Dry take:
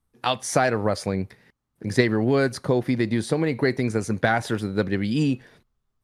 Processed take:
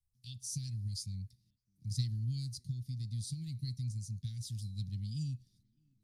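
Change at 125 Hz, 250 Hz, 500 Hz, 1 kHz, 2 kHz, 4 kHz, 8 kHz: −8.0 dB, −23.5 dB, below −40 dB, below −40 dB, below −40 dB, −13.5 dB, −10.0 dB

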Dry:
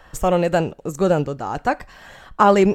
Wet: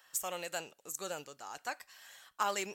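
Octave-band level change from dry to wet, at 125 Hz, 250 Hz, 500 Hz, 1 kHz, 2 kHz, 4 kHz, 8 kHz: −33.5, −30.5, −24.5, −19.0, −13.5, −8.0, −1.5 decibels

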